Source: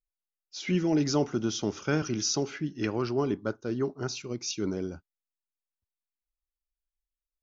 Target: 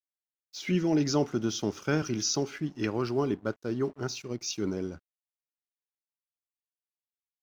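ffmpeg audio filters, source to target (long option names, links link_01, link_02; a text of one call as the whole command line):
ffmpeg -i in.wav -af "aeval=exprs='sgn(val(0))*max(abs(val(0))-0.00188,0)':channel_layout=same" out.wav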